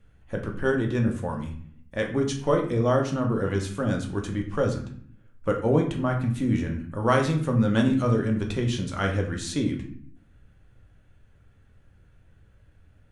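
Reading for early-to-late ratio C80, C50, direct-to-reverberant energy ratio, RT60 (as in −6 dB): 12.0 dB, 8.5 dB, 1.5 dB, 0.55 s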